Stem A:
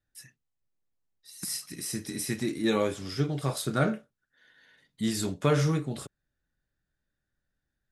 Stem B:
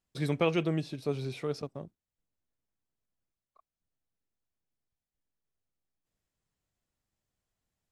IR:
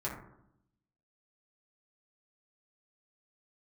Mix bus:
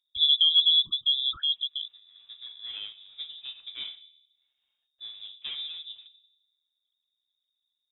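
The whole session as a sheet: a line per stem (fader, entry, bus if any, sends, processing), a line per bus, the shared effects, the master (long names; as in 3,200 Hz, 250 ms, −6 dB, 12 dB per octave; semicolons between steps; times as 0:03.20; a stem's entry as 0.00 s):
−14.0 dB, 0.00 s, send −13.5 dB, running median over 25 samples; automatic ducking −15 dB, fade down 0.35 s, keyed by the second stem
0.0 dB, 0.00 s, no send, spectral envelope exaggerated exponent 3; parametric band 270 Hz +11.5 dB 1.4 octaves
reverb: on, RT60 0.75 s, pre-delay 4 ms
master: voice inversion scrambler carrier 3,700 Hz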